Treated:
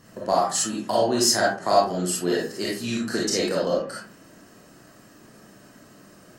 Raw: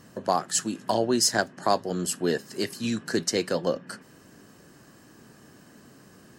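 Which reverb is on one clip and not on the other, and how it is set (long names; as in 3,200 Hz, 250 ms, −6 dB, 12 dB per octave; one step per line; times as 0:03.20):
comb and all-pass reverb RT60 0.41 s, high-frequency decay 0.55×, pre-delay 5 ms, DRR −5 dB
level −2.5 dB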